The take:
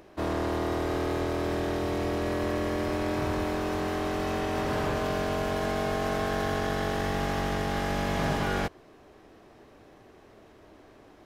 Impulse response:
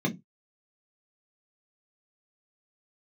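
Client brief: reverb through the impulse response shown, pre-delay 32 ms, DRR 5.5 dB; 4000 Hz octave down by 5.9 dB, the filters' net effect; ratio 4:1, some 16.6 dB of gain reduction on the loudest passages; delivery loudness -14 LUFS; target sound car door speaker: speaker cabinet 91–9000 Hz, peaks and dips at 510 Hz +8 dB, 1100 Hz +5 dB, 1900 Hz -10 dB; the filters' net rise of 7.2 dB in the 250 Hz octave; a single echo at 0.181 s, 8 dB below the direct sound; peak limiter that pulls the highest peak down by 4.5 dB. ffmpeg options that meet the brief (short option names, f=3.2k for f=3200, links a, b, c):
-filter_complex "[0:a]equalizer=f=250:t=o:g=9,equalizer=f=4k:t=o:g=-7.5,acompressor=threshold=-43dB:ratio=4,alimiter=level_in=11dB:limit=-24dB:level=0:latency=1,volume=-11dB,aecho=1:1:181:0.398,asplit=2[a][b];[1:a]atrim=start_sample=2205,adelay=32[c];[b][c]afir=irnorm=-1:irlink=0,volume=-13.5dB[d];[a][d]amix=inputs=2:normalize=0,highpass=91,equalizer=f=510:t=q:w=4:g=8,equalizer=f=1.1k:t=q:w=4:g=5,equalizer=f=1.9k:t=q:w=4:g=-10,lowpass=f=9k:w=0.5412,lowpass=f=9k:w=1.3066,volume=21.5dB"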